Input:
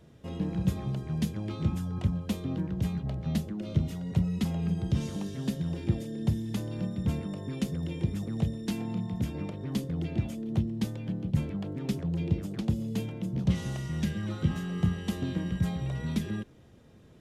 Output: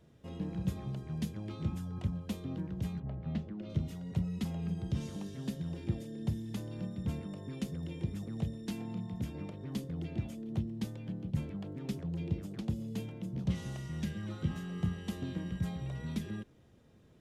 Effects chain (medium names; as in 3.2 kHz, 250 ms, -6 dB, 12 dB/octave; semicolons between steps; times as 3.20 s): 2.99–3.68 s: low-pass 1.8 kHz -> 4 kHz 12 dB/octave; trim -6.5 dB